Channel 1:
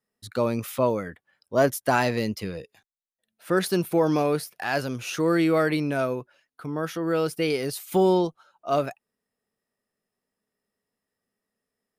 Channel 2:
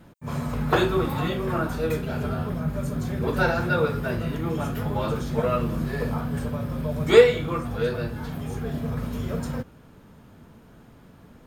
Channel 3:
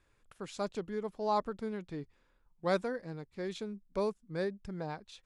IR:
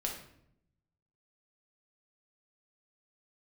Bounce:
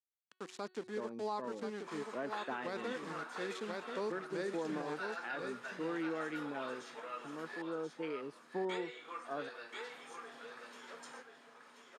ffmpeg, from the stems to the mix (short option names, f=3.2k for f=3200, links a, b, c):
-filter_complex "[0:a]afwtdn=0.0316,adelay=600,volume=-14.5dB[a];[1:a]acompressor=threshold=-30dB:ratio=3,highpass=740,adelay=1600,volume=-7dB,asplit=3[b][c][d];[b]atrim=end=7.62,asetpts=PTS-STARTPTS,afade=t=out:st=7.616:d=0.004:c=hsin[e];[c]atrim=start=7.62:end=8.69,asetpts=PTS-STARTPTS,volume=0[f];[d]atrim=start=8.69,asetpts=PTS-STARTPTS,afade=t=in:d=0.004:c=hsin[g];[e][f][g]concat=n=3:v=0:a=1,asplit=2[h][i];[i]volume=-5.5dB[j];[2:a]aeval=exprs='val(0)*gte(abs(val(0)),0.00596)':c=same,volume=-1.5dB,asplit=2[k][l];[l]volume=-7.5dB[m];[j][m]amix=inputs=2:normalize=0,aecho=0:1:1033:1[n];[a][h][k][n]amix=inputs=4:normalize=0,highpass=f=190:w=0.5412,highpass=f=190:w=1.3066,equalizer=f=190:t=q:w=4:g=-4,equalizer=f=620:t=q:w=4:g=-6,equalizer=f=1.8k:t=q:w=4:g=3,lowpass=f=8.8k:w=0.5412,lowpass=f=8.8k:w=1.3066,bandreject=f=370.7:t=h:w=4,bandreject=f=741.4:t=h:w=4,bandreject=f=1.1121k:t=h:w=4,bandreject=f=1.4828k:t=h:w=4,bandreject=f=1.8535k:t=h:w=4,bandreject=f=2.2242k:t=h:w=4,bandreject=f=2.5949k:t=h:w=4,bandreject=f=2.9656k:t=h:w=4,bandreject=f=3.3363k:t=h:w=4,bandreject=f=3.707k:t=h:w=4,bandreject=f=4.0777k:t=h:w=4,bandreject=f=4.4484k:t=h:w=4,alimiter=level_in=5.5dB:limit=-24dB:level=0:latency=1:release=154,volume=-5.5dB"